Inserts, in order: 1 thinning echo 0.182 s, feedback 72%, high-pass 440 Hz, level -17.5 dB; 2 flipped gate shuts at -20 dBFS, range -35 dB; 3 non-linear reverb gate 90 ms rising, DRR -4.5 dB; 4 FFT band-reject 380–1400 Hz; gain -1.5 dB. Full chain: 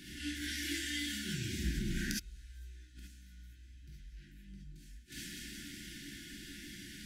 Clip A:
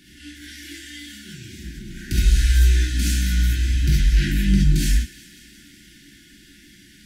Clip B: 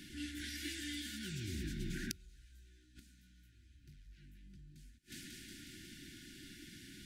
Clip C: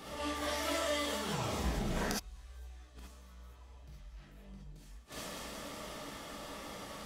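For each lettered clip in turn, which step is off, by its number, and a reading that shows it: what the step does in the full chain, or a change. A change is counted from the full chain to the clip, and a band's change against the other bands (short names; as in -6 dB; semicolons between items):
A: 2, crest factor change -11.5 dB; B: 3, momentary loudness spread change +1 LU; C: 4, 1 kHz band +23.5 dB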